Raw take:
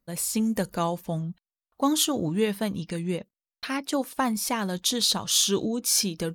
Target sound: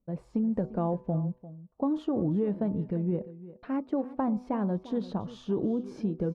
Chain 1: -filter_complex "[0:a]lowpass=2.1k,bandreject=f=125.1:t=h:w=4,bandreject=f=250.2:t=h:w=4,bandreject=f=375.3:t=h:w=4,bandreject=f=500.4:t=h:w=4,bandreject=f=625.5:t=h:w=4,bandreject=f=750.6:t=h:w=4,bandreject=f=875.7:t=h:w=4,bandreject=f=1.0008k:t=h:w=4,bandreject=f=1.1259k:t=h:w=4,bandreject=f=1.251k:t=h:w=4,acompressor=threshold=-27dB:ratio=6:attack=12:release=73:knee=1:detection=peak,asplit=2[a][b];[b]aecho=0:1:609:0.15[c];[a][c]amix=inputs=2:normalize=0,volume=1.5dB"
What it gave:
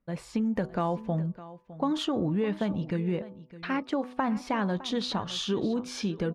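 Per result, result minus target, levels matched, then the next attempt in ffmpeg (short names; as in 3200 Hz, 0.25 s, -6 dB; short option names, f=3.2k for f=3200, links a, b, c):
echo 0.262 s late; 2000 Hz band +13.5 dB
-filter_complex "[0:a]lowpass=2.1k,bandreject=f=125.1:t=h:w=4,bandreject=f=250.2:t=h:w=4,bandreject=f=375.3:t=h:w=4,bandreject=f=500.4:t=h:w=4,bandreject=f=625.5:t=h:w=4,bandreject=f=750.6:t=h:w=4,bandreject=f=875.7:t=h:w=4,bandreject=f=1.0008k:t=h:w=4,bandreject=f=1.1259k:t=h:w=4,bandreject=f=1.251k:t=h:w=4,acompressor=threshold=-27dB:ratio=6:attack=12:release=73:knee=1:detection=peak,asplit=2[a][b];[b]aecho=0:1:347:0.15[c];[a][c]amix=inputs=2:normalize=0,volume=1.5dB"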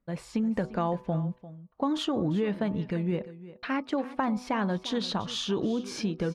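2000 Hz band +13.5 dB
-filter_complex "[0:a]lowpass=650,bandreject=f=125.1:t=h:w=4,bandreject=f=250.2:t=h:w=4,bandreject=f=375.3:t=h:w=4,bandreject=f=500.4:t=h:w=4,bandreject=f=625.5:t=h:w=4,bandreject=f=750.6:t=h:w=4,bandreject=f=875.7:t=h:w=4,bandreject=f=1.0008k:t=h:w=4,bandreject=f=1.1259k:t=h:w=4,bandreject=f=1.251k:t=h:w=4,acompressor=threshold=-27dB:ratio=6:attack=12:release=73:knee=1:detection=peak,asplit=2[a][b];[b]aecho=0:1:347:0.15[c];[a][c]amix=inputs=2:normalize=0,volume=1.5dB"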